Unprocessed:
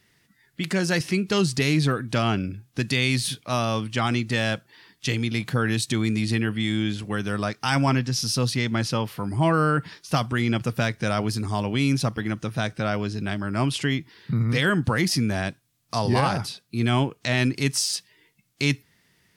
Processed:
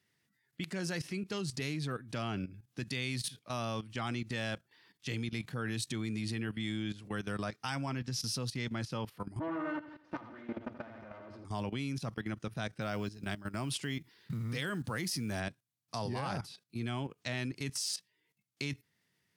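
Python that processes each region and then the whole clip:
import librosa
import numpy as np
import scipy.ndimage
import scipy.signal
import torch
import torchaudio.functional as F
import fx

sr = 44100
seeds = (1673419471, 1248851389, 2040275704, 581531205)

y = fx.chain(x, sr, fx.lower_of_two(delay_ms=3.3),
    fx.lowpass(hz=1700.0, slope=12),
    fx.echo_feedback(ms=80, feedback_pct=47, wet_db=-6.0), at=(9.39, 11.45))
y = fx.chain(y, sr, fx.high_shelf(hz=6900.0, db=8.5),
    fx.quant_float(bits=4), at=(12.81, 15.4))
y = scipy.signal.sosfilt(scipy.signal.butter(4, 81.0, 'highpass', fs=sr, output='sos'), y)
y = fx.level_steps(y, sr, step_db=14)
y = F.gain(torch.from_numpy(y), -8.0).numpy()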